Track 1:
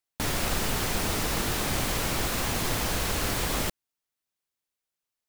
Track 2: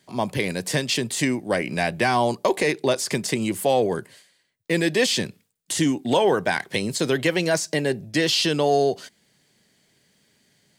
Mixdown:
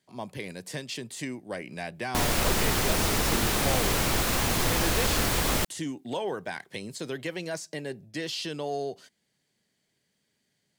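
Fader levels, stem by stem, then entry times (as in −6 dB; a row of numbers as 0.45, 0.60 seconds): +2.5, −12.5 decibels; 1.95, 0.00 seconds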